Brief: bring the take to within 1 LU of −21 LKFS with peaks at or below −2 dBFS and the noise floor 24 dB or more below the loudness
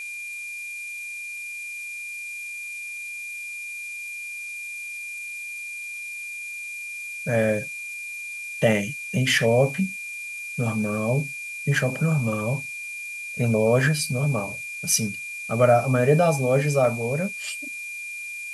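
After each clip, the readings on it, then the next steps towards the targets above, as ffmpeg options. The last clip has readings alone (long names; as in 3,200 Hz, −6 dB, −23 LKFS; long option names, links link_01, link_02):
interfering tone 2,400 Hz; level of the tone −32 dBFS; background noise floor −35 dBFS; target noise floor −50 dBFS; integrated loudness −25.5 LKFS; sample peak −6.0 dBFS; target loudness −21.0 LKFS
→ -af "bandreject=frequency=2400:width=30"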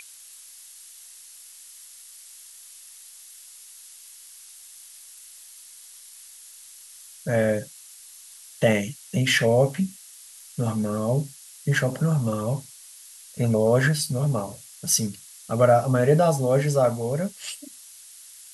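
interfering tone none found; background noise floor −47 dBFS; target noise floor −48 dBFS
→ -af "afftdn=noise_reduction=6:noise_floor=-47"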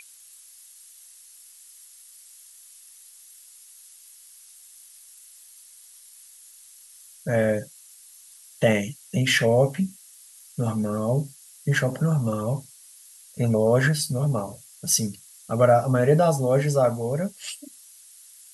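background noise floor −50 dBFS; integrated loudness −23.5 LKFS; sample peak −6.5 dBFS; target loudness −21.0 LKFS
→ -af "volume=2.5dB"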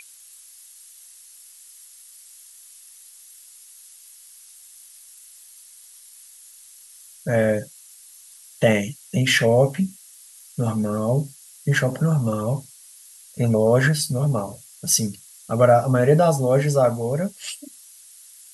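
integrated loudness −21.0 LKFS; sample peak −4.0 dBFS; background noise floor −48 dBFS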